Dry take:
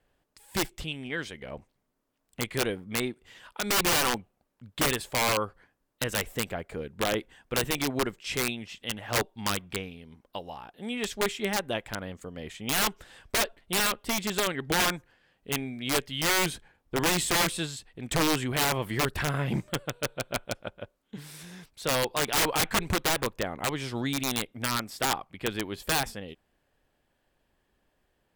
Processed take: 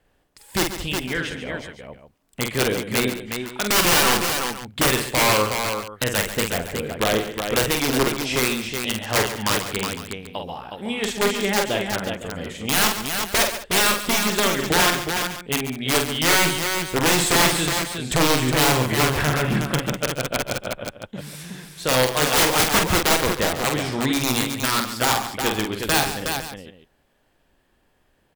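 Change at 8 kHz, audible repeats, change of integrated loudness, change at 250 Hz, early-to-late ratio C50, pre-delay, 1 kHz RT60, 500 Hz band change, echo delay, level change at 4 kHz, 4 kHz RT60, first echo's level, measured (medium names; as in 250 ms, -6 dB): +8.5 dB, 5, +8.0 dB, +8.0 dB, no reverb, no reverb, no reverb, +8.5 dB, 47 ms, +8.5 dB, no reverb, -5.0 dB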